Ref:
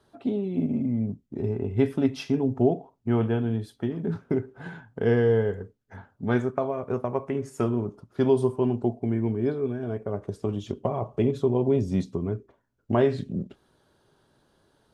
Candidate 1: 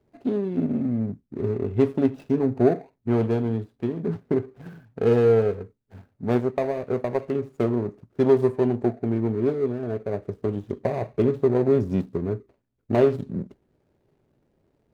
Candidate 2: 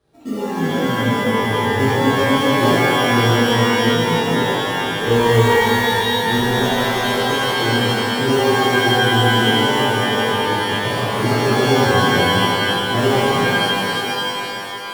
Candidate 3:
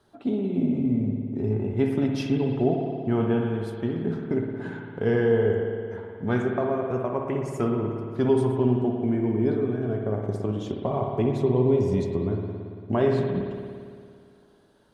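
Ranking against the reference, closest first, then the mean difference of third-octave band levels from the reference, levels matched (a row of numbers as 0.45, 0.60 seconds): 1, 3, 2; 3.0, 4.5, 18.0 decibels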